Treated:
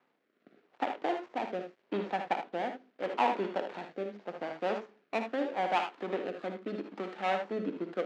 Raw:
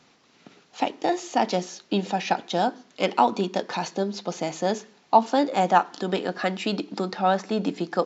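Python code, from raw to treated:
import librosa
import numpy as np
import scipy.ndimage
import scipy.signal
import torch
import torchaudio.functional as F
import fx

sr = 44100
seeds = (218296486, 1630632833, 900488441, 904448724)

p1 = fx.dead_time(x, sr, dead_ms=0.24)
p2 = fx.bandpass_edges(p1, sr, low_hz=300.0, high_hz=2200.0)
p3 = p2 + fx.room_early_taps(p2, sr, ms=(58, 77), db=(-9.0, -8.5), dry=0)
p4 = fx.rotary(p3, sr, hz=0.8)
y = p4 * librosa.db_to_amplitude(-5.0)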